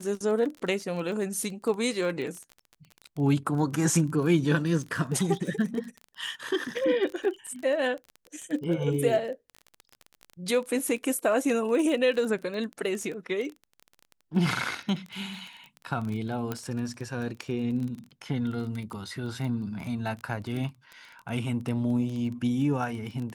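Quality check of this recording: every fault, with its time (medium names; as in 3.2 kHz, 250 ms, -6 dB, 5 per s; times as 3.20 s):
crackle 21 per s -33 dBFS
16.52 s: pop -17 dBFS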